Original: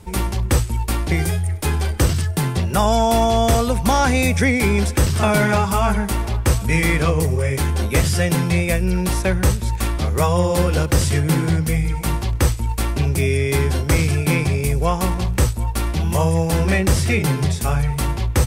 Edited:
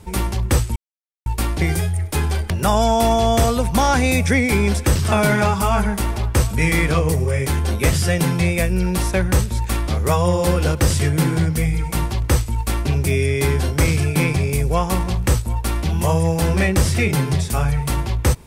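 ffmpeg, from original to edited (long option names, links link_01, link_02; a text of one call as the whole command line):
ffmpeg -i in.wav -filter_complex "[0:a]asplit=3[link_01][link_02][link_03];[link_01]atrim=end=0.76,asetpts=PTS-STARTPTS,afade=type=out:start_time=0.756:duration=0.004:curve=hsin,apad=pad_dur=0.5[link_04];[link_02]atrim=start=0.76:end=2.002,asetpts=PTS-STARTPTS,afade=type=in:duration=0.004:curve=hsin[link_05];[link_03]atrim=start=2.608[link_06];[link_04][link_05]concat=n=2:v=0:a=1[link_07];[link_07][link_06]acrossfade=duration=0.004:curve1=hsin:curve2=hsin" out.wav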